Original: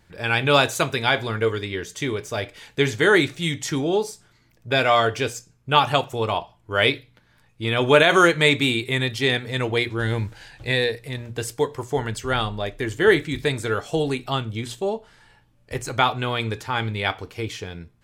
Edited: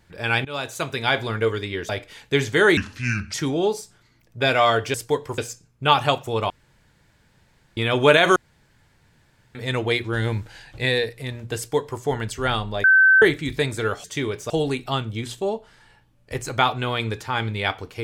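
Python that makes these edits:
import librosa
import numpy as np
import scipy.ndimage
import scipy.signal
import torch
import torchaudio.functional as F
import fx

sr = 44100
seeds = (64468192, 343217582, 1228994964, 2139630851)

y = fx.edit(x, sr, fx.fade_in_from(start_s=0.45, length_s=0.73, floor_db=-21.5),
    fx.move(start_s=1.89, length_s=0.46, to_s=13.9),
    fx.speed_span(start_s=3.23, length_s=0.41, speed=0.72),
    fx.room_tone_fill(start_s=6.36, length_s=1.27),
    fx.room_tone_fill(start_s=8.22, length_s=1.19),
    fx.duplicate(start_s=11.43, length_s=0.44, to_s=5.24),
    fx.bleep(start_s=12.7, length_s=0.38, hz=1540.0, db=-10.5), tone=tone)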